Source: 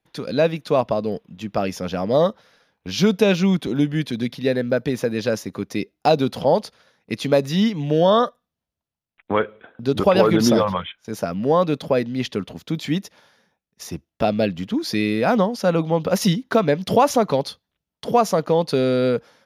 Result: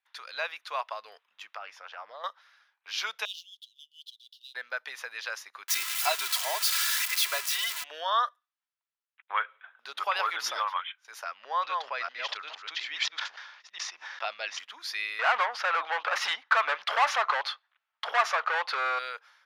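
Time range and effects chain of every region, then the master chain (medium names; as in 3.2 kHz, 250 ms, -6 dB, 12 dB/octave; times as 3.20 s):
1.56–2.24 s: low-pass 1.6 kHz 6 dB/octave + compression 4:1, threshold -21 dBFS + loudspeaker Doppler distortion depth 0.11 ms
3.25–4.55 s: median filter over 5 samples + Chebyshev high-pass 2.9 kHz, order 8 + upward expansion, over -50 dBFS
5.68–7.84 s: zero-crossing glitches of -11 dBFS + comb 3 ms, depth 71%
11.24–14.59 s: chunks repeated in reverse 424 ms, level -4 dB + low-pass 6.2 kHz 24 dB/octave + decay stretcher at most 57 dB/s
15.19–18.99 s: treble shelf 5.1 kHz -12 dB + band-stop 980 Hz, Q 14 + overdrive pedal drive 25 dB, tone 1.6 kHz, clips at -4.5 dBFS
whole clip: high-pass 1.1 kHz 24 dB/octave; treble shelf 3.8 kHz -11.5 dB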